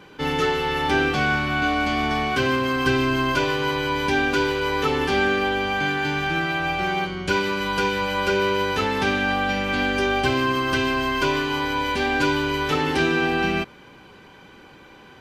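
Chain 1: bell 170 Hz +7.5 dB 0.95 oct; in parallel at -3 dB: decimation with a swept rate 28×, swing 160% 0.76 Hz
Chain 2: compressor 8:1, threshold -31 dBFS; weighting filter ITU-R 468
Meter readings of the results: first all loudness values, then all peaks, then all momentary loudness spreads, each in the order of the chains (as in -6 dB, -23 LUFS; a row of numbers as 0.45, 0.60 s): -18.0, -30.0 LUFS; -3.0, -16.5 dBFS; 4, 3 LU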